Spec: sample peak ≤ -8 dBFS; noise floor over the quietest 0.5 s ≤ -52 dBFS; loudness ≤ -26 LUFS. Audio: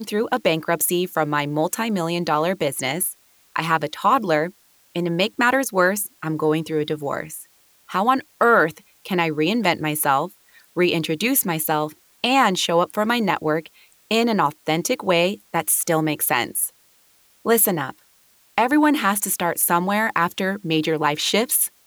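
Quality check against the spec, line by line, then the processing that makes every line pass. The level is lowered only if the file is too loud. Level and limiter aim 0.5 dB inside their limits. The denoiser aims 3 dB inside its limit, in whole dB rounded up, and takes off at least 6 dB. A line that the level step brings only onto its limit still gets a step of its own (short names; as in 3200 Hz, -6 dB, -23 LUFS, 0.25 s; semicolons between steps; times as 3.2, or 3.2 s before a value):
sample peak -4.5 dBFS: fail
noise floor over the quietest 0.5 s -57 dBFS: OK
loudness -20.5 LUFS: fail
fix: gain -6 dB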